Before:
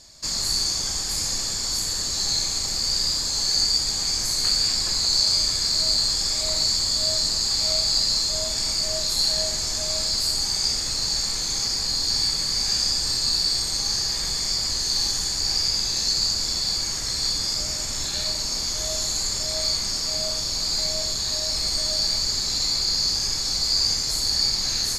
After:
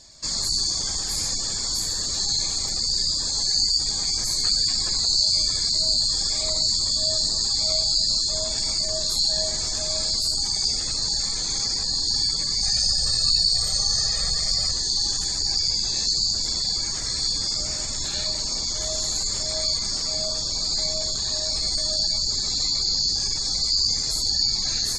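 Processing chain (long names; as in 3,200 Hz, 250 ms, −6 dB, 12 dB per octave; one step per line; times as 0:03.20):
gate on every frequency bin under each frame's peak −25 dB strong
0:12.61–0:14.72: comb filter 1.6 ms, depth 78%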